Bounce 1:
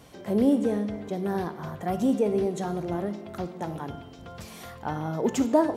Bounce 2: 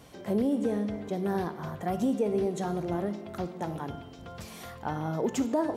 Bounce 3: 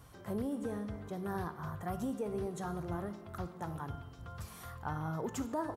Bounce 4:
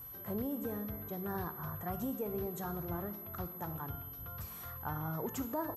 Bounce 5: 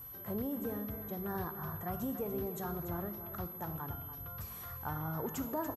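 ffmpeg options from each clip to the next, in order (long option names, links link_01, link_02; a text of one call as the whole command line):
ffmpeg -i in.wav -af "alimiter=limit=-17.5dB:level=0:latency=1:release=218,volume=-1dB" out.wav
ffmpeg -i in.wav -af "firequalizer=gain_entry='entry(110,0);entry(200,-12);entry(630,-12);entry(1200,-2);entry(2200,-12);entry(6800,-9);entry(9800,-4)':delay=0.05:min_phase=1,volume=2dB" out.wav
ffmpeg -i in.wav -af "aeval=exprs='val(0)+0.00562*sin(2*PI*12000*n/s)':channel_layout=same,volume=-1dB" out.wav
ffmpeg -i in.wav -af "aecho=1:1:288:0.282" out.wav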